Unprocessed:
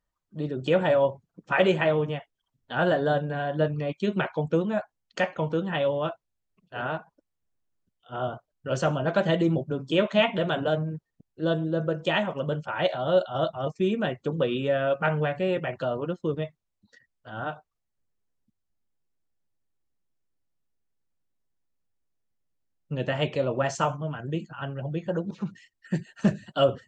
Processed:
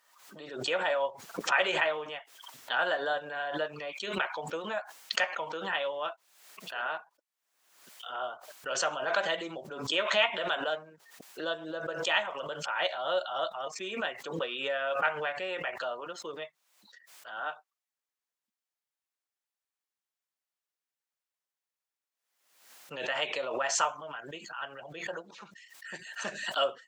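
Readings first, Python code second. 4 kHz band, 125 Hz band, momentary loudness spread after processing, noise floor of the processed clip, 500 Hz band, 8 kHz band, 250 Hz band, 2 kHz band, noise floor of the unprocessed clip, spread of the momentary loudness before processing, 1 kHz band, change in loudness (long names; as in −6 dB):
+2.0 dB, −23.0 dB, 15 LU, below −85 dBFS, −8.5 dB, can't be measured, −16.5 dB, +0.5 dB, −81 dBFS, 12 LU, −2.0 dB, −5.0 dB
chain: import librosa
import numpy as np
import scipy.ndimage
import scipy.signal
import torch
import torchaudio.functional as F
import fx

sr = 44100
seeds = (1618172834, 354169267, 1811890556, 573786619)

y = scipy.signal.sosfilt(scipy.signal.butter(2, 910.0, 'highpass', fs=sr, output='sos'), x)
y = fx.pre_swell(y, sr, db_per_s=65.0)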